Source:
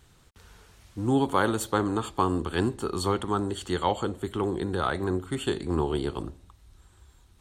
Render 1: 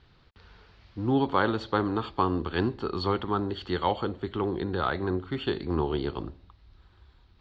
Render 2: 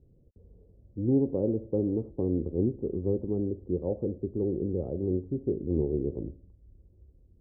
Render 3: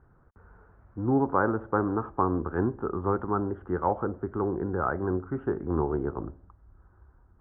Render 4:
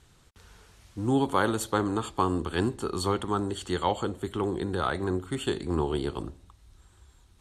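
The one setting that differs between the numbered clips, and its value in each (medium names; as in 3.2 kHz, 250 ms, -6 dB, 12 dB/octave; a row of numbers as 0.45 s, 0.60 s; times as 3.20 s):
elliptic low-pass, frequency: 4.7 kHz, 540 Hz, 1.5 kHz, 12 kHz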